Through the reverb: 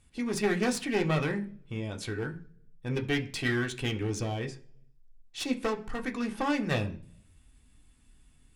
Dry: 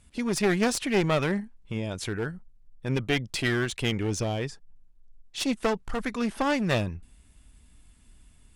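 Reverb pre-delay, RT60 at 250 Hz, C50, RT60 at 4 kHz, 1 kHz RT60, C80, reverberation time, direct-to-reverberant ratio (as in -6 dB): 3 ms, 0.75 s, 15.5 dB, 0.55 s, 0.40 s, 20.0 dB, 0.50 s, 2.5 dB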